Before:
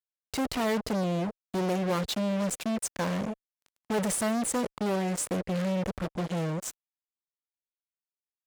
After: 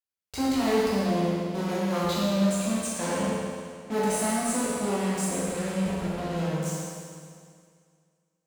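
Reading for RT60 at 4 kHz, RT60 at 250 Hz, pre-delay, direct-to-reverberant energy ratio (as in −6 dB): 2.1 s, 2.2 s, 12 ms, −7.5 dB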